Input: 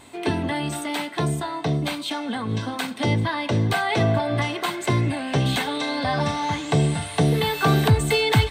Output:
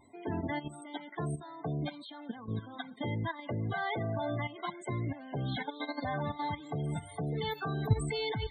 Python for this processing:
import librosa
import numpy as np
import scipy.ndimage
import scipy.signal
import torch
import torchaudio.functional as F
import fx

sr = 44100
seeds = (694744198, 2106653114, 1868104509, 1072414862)

y = fx.notch(x, sr, hz=2600.0, q=15.0)
y = fx.level_steps(y, sr, step_db=13)
y = fx.echo_wet_highpass(y, sr, ms=214, feedback_pct=48, hz=3900.0, wet_db=-20)
y = fx.spec_topn(y, sr, count=32)
y = y * librosa.db_to_amplitude(-7.5)